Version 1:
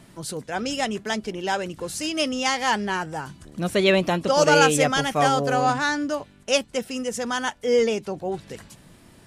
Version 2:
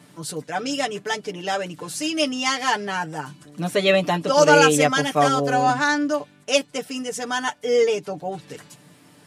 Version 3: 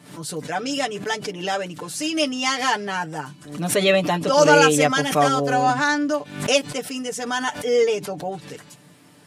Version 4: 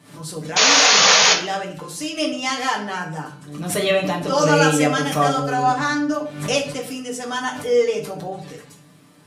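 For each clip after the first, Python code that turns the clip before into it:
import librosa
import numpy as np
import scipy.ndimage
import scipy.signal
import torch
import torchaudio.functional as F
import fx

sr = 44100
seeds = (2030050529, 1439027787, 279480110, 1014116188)

y1 = scipy.signal.sosfilt(scipy.signal.butter(2, 150.0, 'highpass', fs=sr, output='sos'), x)
y1 = y1 + 0.83 * np.pad(y1, (int(6.8 * sr / 1000.0), 0))[:len(y1)]
y1 = y1 * 10.0 ** (-1.0 / 20.0)
y2 = fx.pre_swell(y1, sr, db_per_s=100.0)
y3 = fx.spec_paint(y2, sr, seeds[0], shape='noise', start_s=0.56, length_s=0.78, low_hz=430.0, high_hz=6900.0, level_db=-12.0)
y3 = fx.room_shoebox(y3, sr, seeds[1], volume_m3=54.0, walls='mixed', distance_m=0.6)
y3 = y3 * 10.0 ** (-3.5 / 20.0)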